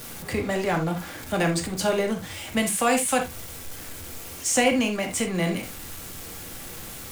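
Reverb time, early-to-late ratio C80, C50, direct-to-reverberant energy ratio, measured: non-exponential decay, 18.0 dB, 9.0 dB, 2.0 dB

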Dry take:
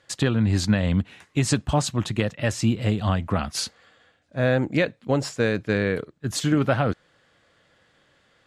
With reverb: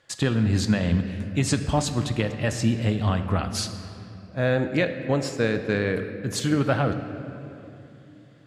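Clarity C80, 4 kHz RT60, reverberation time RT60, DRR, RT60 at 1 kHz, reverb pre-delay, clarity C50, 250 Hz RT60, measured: 10.0 dB, 1.8 s, 2.8 s, 8.0 dB, 2.5 s, 17 ms, 9.0 dB, 4.0 s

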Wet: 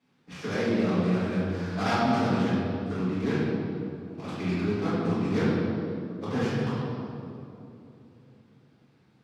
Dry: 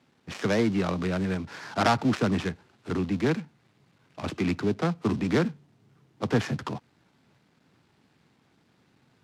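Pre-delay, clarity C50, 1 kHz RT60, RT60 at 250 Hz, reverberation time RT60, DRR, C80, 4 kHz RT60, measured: 4 ms, −3.5 dB, 2.5 s, 3.8 s, 3.0 s, −12.0 dB, −1.0 dB, 1.7 s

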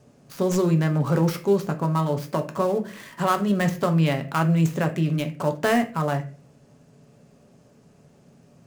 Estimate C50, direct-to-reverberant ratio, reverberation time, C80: 13.5 dB, 5.5 dB, 0.40 s, 19.0 dB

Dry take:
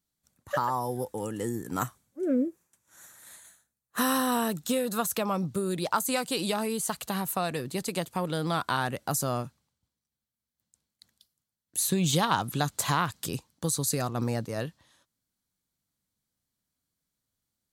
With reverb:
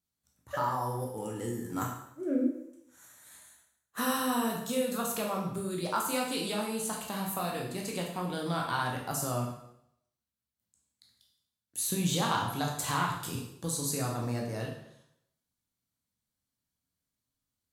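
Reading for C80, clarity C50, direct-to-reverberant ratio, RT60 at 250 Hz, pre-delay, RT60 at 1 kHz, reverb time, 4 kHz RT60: 7.0 dB, 4.0 dB, −1.5 dB, 0.75 s, 7 ms, 0.75 s, 0.75 s, 0.70 s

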